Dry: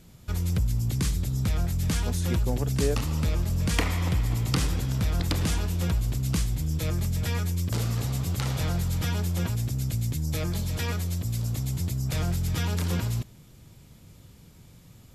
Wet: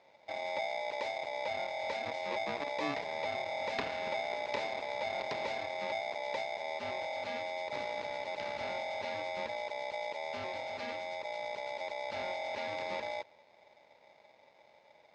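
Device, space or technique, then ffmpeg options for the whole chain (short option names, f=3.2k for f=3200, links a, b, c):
ring modulator pedal into a guitar cabinet: -af "aeval=exprs='val(0)*sgn(sin(2*PI*720*n/s))':c=same,highpass=82,equalizer=f=750:t=q:w=4:g=-6,equalizer=f=1.2k:t=q:w=4:g=-5,equalizer=f=3.2k:t=q:w=4:g=-6,lowpass=f=4.3k:w=0.5412,lowpass=f=4.3k:w=1.3066,volume=-8.5dB"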